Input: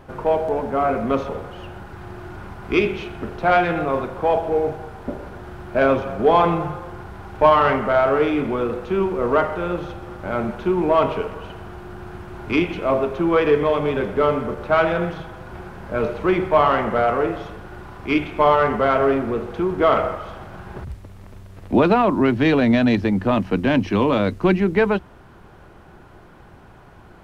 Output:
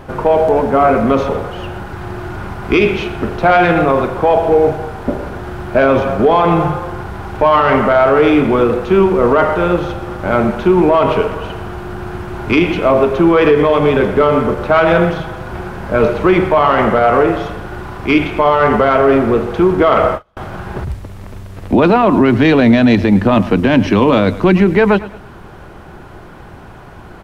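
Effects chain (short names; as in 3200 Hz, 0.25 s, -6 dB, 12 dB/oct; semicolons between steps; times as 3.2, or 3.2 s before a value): on a send: feedback echo 0.108 s, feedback 41%, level -19 dB; 19.93–20.37 on the sum: gate -26 dBFS, range -35 dB; maximiser +11.5 dB; gain -1 dB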